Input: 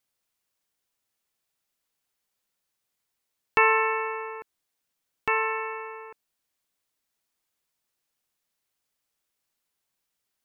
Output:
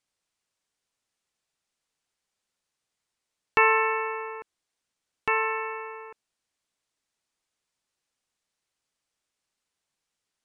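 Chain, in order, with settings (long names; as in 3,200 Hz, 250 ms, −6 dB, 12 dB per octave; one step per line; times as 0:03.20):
low-pass filter 9,400 Hz 24 dB per octave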